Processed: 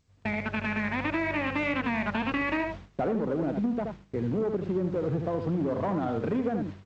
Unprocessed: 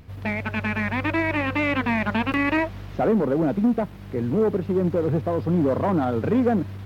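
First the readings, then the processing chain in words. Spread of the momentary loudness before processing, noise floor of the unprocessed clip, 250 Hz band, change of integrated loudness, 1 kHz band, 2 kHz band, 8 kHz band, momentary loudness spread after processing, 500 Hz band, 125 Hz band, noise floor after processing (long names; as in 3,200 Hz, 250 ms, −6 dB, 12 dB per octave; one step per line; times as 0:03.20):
5 LU, −38 dBFS, −6.5 dB, −6.5 dB, −5.5 dB, −5.0 dB, can't be measured, 4 LU, −6.5 dB, −7.0 dB, −60 dBFS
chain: noise gate with hold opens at −26 dBFS
on a send: single-tap delay 76 ms −7 dB
on the sum: downward compressor 4 to 1, threshold −22 dBFS, peak gain reduction 6.5 dB
level −3.5 dB
G.722 64 kbit/s 16,000 Hz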